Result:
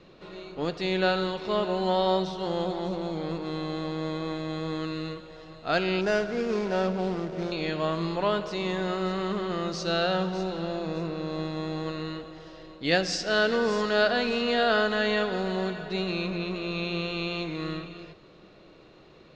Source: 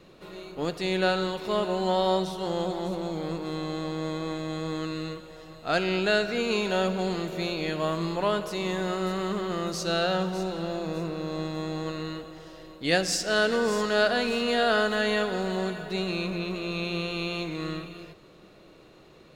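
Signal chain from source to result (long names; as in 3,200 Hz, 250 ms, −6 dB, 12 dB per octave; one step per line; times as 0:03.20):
0:06.01–0:07.52: running median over 15 samples
low-pass filter 5,800 Hz 24 dB per octave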